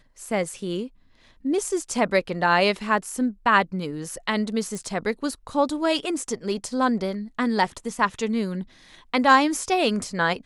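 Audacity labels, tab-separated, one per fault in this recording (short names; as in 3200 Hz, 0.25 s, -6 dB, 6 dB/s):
4.750000	4.750000	pop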